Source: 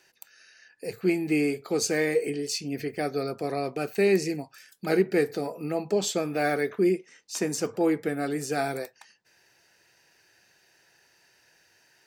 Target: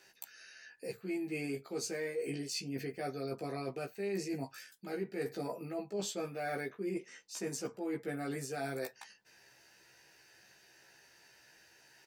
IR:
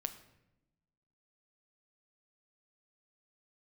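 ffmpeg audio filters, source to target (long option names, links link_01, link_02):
-filter_complex "[0:a]asplit=2[link_01][link_02];[link_02]adelay=15,volume=-2dB[link_03];[link_01][link_03]amix=inputs=2:normalize=0,areverse,acompressor=threshold=-34dB:ratio=6,areverse,volume=-2dB"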